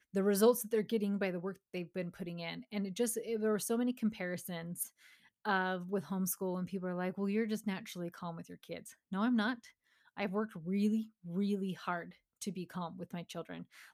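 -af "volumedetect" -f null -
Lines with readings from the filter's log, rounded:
mean_volume: -36.7 dB
max_volume: -18.0 dB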